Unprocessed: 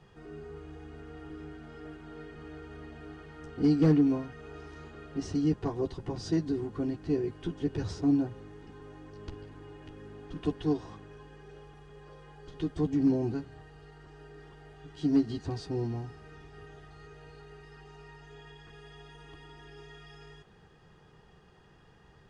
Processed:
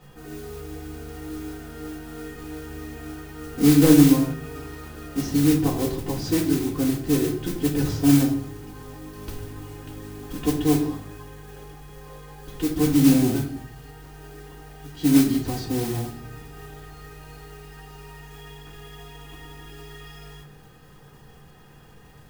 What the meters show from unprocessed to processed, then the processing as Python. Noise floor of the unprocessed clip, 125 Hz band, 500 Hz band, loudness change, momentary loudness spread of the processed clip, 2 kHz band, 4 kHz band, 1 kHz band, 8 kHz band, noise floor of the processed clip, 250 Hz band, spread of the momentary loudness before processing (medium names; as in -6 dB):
-58 dBFS, +9.0 dB, +7.0 dB, +9.0 dB, 21 LU, +12.0 dB, +14.0 dB, +9.5 dB, no reading, -49 dBFS, +9.5 dB, 21 LU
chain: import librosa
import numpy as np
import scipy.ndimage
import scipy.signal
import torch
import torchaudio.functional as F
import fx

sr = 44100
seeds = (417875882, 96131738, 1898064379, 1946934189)

y = fx.mod_noise(x, sr, seeds[0], snr_db=12)
y = fx.room_shoebox(y, sr, seeds[1], volume_m3=950.0, walls='furnished', distance_m=2.0)
y = y * librosa.db_to_amplitude(5.5)